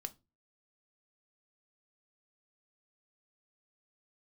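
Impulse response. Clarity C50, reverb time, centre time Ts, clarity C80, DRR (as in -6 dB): 22.0 dB, 0.25 s, 3 ms, 30.0 dB, 8.5 dB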